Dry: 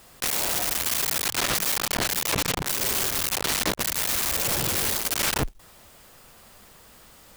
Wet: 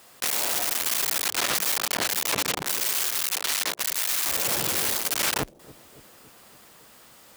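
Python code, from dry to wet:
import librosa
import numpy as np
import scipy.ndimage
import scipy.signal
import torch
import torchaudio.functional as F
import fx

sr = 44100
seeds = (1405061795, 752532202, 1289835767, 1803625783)

y = fx.highpass(x, sr, hz=fx.steps((0.0, 320.0), (2.8, 1200.0), (4.26, 230.0)), slope=6)
y = fx.echo_bbd(y, sr, ms=281, stages=1024, feedback_pct=65, wet_db=-17.5)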